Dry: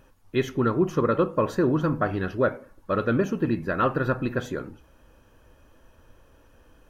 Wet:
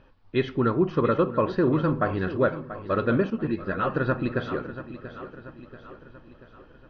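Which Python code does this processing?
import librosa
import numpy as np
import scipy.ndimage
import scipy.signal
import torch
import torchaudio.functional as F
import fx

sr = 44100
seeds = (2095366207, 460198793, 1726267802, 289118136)

p1 = scipy.signal.sosfilt(scipy.signal.butter(8, 4800.0, 'lowpass', fs=sr, output='sos'), x)
p2 = p1 + fx.echo_feedback(p1, sr, ms=685, feedback_pct=51, wet_db=-13, dry=0)
y = fx.ensemble(p2, sr, at=(3.3, 3.94))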